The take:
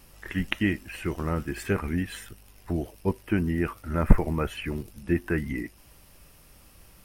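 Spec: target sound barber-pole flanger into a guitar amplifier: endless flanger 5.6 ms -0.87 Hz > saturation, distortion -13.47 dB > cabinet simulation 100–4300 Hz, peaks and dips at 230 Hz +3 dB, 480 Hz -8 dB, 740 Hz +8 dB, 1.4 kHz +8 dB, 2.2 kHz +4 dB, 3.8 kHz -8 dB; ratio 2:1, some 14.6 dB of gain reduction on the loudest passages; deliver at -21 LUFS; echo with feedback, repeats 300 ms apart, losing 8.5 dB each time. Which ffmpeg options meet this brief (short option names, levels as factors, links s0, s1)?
-filter_complex "[0:a]acompressor=threshold=0.0126:ratio=2,aecho=1:1:300|600|900|1200:0.376|0.143|0.0543|0.0206,asplit=2[s0][s1];[s1]adelay=5.6,afreqshift=-0.87[s2];[s0][s2]amix=inputs=2:normalize=1,asoftclip=threshold=0.0266,highpass=100,equalizer=f=230:t=q:w=4:g=3,equalizer=f=480:t=q:w=4:g=-8,equalizer=f=740:t=q:w=4:g=8,equalizer=f=1400:t=q:w=4:g=8,equalizer=f=2200:t=q:w=4:g=4,equalizer=f=3800:t=q:w=4:g=-8,lowpass=f=4300:w=0.5412,lowpass=f=4300:w=1.3066,volume=10.6"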